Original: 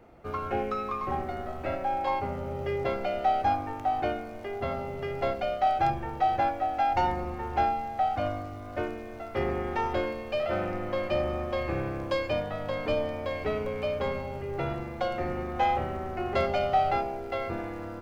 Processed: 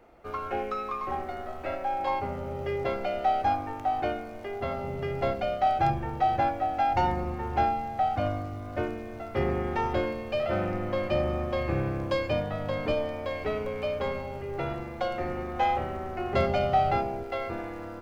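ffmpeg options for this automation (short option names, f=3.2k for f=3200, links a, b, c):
-af "asetnsamples=n=441:p=0,asendcmd='2 equalizer g -1;4.83 equalizer g 5.5;12.91 equalizer g -2;16.33 equalizer g 7.5;17.23 equalizer g -3.5',equalizer=f=130:t=o:w=2:g=-8.5"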